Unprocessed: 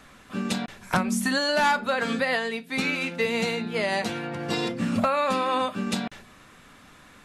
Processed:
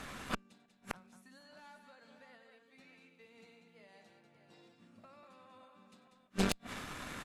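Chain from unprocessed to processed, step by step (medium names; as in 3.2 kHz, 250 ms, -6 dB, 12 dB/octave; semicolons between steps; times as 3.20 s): multi-tap echo 58/95/192/466/572/592 ms -19.5/-16/-7/-15/-16/-9.5 dB; inverted gate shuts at -25 dBFS, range -40 dB; Chebyshev shaper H 4 -8 dB, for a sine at -23 dBFS; trim +4 dB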